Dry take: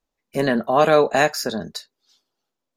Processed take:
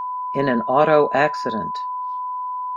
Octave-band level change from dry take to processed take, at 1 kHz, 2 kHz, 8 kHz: +4.0 dB, -0.5 dB, under -15 dB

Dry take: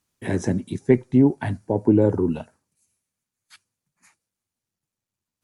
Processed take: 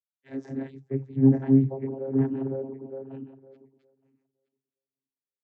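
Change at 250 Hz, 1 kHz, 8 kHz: -3.0 dB, -10.5 dB, no reading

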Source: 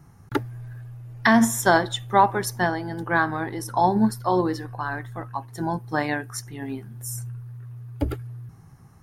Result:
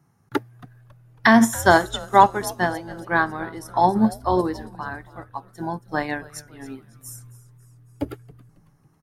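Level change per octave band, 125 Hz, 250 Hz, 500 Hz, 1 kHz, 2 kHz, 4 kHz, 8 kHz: -3.0 dB, +1.5 dB, +2.0 dB, +2.5 dB, +2.0 dB, +1.0 dB, -1.5 dB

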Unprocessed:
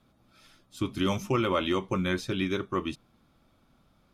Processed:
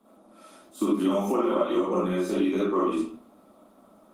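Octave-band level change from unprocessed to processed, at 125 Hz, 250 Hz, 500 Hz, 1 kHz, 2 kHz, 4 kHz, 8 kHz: no reading, +5.5 dB, +5.5 dB, +3.0 dB, -6.0 dB, -6.5 dB, +1.0 dB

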